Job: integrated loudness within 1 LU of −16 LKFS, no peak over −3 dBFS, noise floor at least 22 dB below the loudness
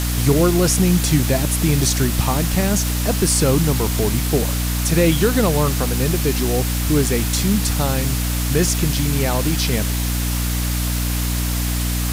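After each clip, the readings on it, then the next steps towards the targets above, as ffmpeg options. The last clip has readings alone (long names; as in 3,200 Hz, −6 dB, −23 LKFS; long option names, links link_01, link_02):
mains hum 60 Hz; hum harmonics up to 300 Hz; level of the hum −19 dBFS; background noise floor −21 dBFS; target noise floor −41 dBFS; integrated loudness −18.5 LKFS; sample peak −3.5 dBFS; target loudness −16.0 LKFS
→ -af "bandreject=frequency=60:width_type=h:width=4,bandreject=frequency=120:width_type=h:width=4,bandreject=frequency=180:width_type=h:width=4,bandreject=frequency=240:width_type=h:width=4,bandreject=frequency=300:width_type=h:width=4"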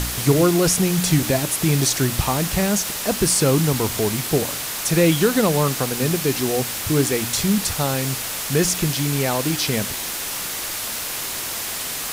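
mains hum none found; background noise floor −28 dBFS; target noise floor −42 dBFS
→ -af "afftdn=noise_reduction=14:noise_floor=-28"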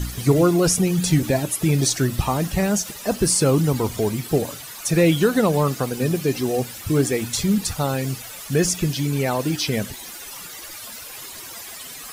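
background noise floor −37 dBFS; target noise floor −43 dBFS
→ -af "afftdn=noise_reduction=6:noise_floor=-37"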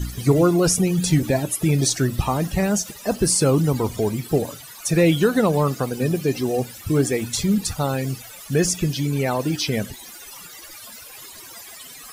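background noise floor −41 dBFS; target noise floor −43 dBFS
→ -af "afftdn=noise_reduction=6:noise_floor=-41"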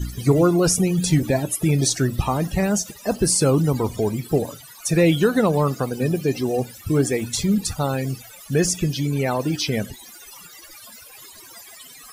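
background noise floor −44 dBFS; integrated loudness −21.0 LKFS; sample peak −6.0 dBFS; target loudness −16.0 LKFS
→ -af "volume=5dB,alimiter=limit=-3dB:level=0:latency=1"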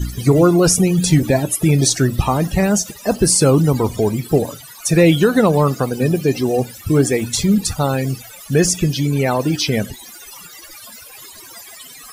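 integrated loudness −16.0 LKFS; sample peak −3.0 dBFS; background noise floor −39 dBFS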